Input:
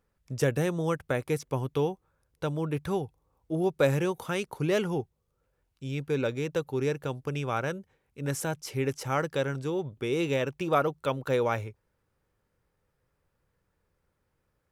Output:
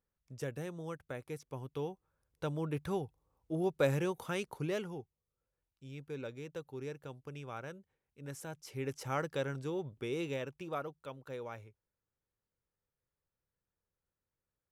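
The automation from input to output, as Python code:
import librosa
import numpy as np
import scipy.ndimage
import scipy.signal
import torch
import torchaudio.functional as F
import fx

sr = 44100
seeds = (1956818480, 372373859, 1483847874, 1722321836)

y = fx.gain(x, sr, db=fx.line((1.47, -14.0), (2.47, -6.0), (4.52, -6.0), (4.97, -14.0), (8.42, -14.0), (9.06, -7.0), (9.97, -7.0), (11.09, -17.0)))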